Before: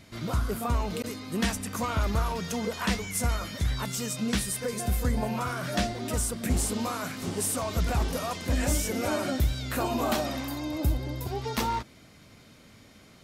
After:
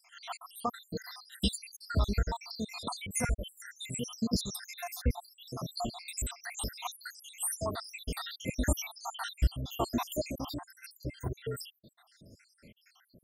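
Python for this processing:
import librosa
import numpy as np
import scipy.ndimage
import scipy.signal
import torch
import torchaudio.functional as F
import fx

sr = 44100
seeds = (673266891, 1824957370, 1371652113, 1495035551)

y = fx.spec_dropout(x, sr, seeds[0], share_pct=83)
y = fx.dynamic_eq(y, sr, hz=4000.0, q=0.83, threshold_db=-53.0, ratio=4.0, max_db=5)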